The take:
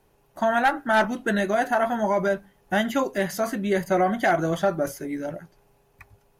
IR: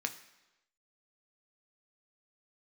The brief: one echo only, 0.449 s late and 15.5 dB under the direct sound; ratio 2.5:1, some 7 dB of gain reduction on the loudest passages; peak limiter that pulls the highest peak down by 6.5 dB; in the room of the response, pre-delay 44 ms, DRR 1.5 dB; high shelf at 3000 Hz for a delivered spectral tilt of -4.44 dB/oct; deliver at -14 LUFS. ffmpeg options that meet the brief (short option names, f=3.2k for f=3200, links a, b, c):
-filter_complex "[0:a]highshelf=f=3k:g=5.5,acompressor=threshold=-27dB:ratio=2.5,alimiter=limit=-21dB:level=0:latency=1,aecho=1:1:449:0.168,asplit=2[a][b];[1:a]atrim=start_sample=2205,adelay=44[c];[b][c]afir=irnorm=-1:irlink=0,volume=-4dB[d];[a][d]amix=inputs=2:normalize=0,volume=15.5dB"